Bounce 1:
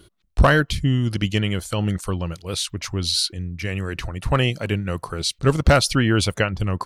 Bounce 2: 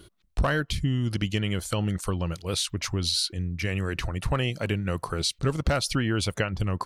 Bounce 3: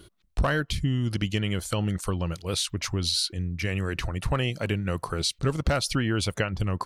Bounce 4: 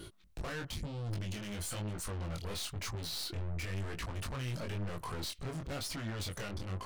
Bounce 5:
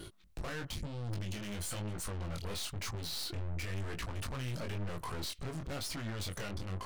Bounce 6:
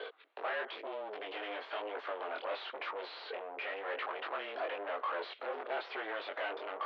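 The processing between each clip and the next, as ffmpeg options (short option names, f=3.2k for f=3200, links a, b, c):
-af "acompressor=threshold=-24dB:ratio=3"
-af anull
-af "alimiter=level_in=1.5dB:limit=-24dB:level=0:latency=1:release=55,volume=-1.5dB,aeval=exprs='(tanh(126*val(0)+0.3)-tanh(0.3))/126':c=same,flanger=delay=18:depth=6.5:speed=1,volume=7.5dB"
-af "aeval=exprs='(tanh(70.8*val(0)+0.5)-tanh(0.5))/70.8':c=same,volume=2.5dB"
-filter_complex "[0:a]asplit=2[a][b];[b]highpass=f=720:p=1,volume=19dB,asoftclip=type=tanh:threshold=-32dB[c];[a][c]amix=inputs=2:normalize=0,lowpass=f=2.9k:p=1,volume=-6dB,highpass=f=310:t=q:w=0.5412,highpass=f=310:t=q:w=1.307,lowpass=f=3.6k:t=q:w=0.5176,lowpass=f=3.6k:t=q:w=0.7071,lowpass=f=3.6k:t=q:w=1.932,afreqshift=100,highshelf=f=2.3k:g=-9,volume=5dB"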